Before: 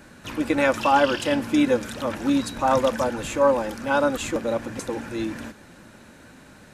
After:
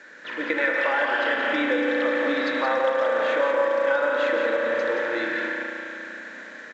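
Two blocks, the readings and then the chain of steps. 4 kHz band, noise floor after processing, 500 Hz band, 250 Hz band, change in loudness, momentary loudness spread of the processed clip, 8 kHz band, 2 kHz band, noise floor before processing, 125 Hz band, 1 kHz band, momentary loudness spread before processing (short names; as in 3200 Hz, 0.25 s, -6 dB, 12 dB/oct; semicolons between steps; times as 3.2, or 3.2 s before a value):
-1.0 dB, -41 dBFS, +1.0 dB, -6.0 dB, 0.0 dB, 13 LU, under -15 dB, +7.0 dB, -49 dBFS, under -20 dB, -3.0 dB, 11 LU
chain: speaker cabinet 450–3400 Hz, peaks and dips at 470 Hz +4 dB, 770 Hz -8 dB, 1100 Hz -5 dB, 1800 Hz +10 dB, 2700 Hz -8 dB; spring tank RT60 3.2 s, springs 34 ms, chirp 45 ms, DRR 0 dB; bit-crush 10-bit; AGC gain up to 4 dB; tilt +1.5 dB/oct; compressor 6:1, threshold -22 dBFS, peak gain reduction 11 dB; echo 0.174 s -5.5 dB; gain +1 dB; A-law 128 kbps 16000 Hz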